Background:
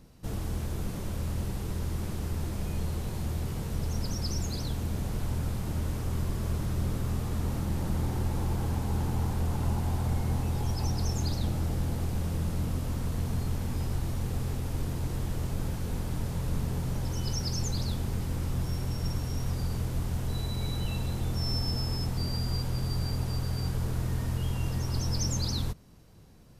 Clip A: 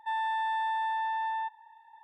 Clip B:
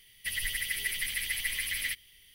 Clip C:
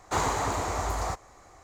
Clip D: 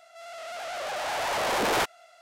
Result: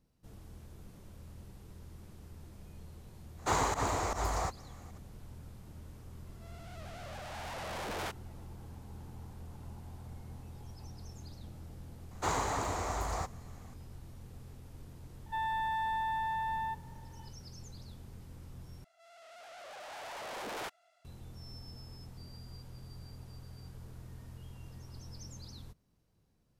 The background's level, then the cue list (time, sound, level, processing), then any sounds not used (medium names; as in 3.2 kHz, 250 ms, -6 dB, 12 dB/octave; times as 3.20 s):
background -18.5 dB
3.35 s: add C -3 dB + volume shaper 154 bpm, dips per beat 1, -20 dB, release 90 ms
6.26 s: add D -14 dB + warped record 78 rpm, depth 160 cents
12.11 s: add C -5.5 dB
15.26 s: add A -3.5 dB + companded quantiser 8-bit
18.84 s: replace with D -15.5 dB
not used: B